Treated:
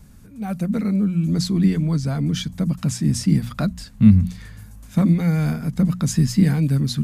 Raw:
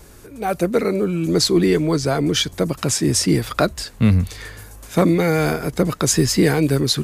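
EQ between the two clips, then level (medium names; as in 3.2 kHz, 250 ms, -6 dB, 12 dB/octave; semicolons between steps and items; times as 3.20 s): resonant low shelf 280 Hz +9.5 dB, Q 3; hum notches 60/120/180/240 Hz; -10.0 dB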